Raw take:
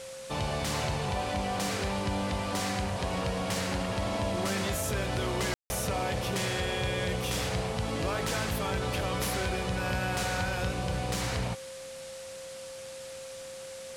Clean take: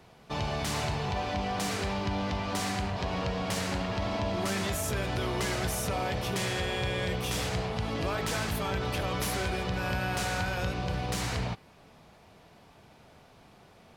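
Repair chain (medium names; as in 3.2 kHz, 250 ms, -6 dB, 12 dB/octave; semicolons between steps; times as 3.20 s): band-stop 530 Hz, Q 30; room tone fill 5.54–5.70 s; noise print and reduce 13 dB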